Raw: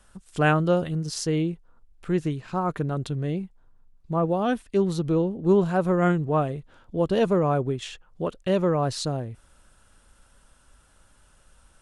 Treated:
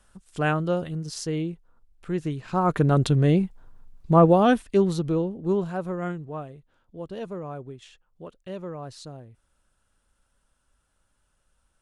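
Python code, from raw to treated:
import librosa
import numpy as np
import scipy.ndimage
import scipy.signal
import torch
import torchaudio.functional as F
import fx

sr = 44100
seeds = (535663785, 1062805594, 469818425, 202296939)

y = fx.gain(x, sr, db=fx.line((2.18, -3.5), (2.94, 8.5), (4.22, 8.5), (5.13, -1.5), (6.53, -13.0)))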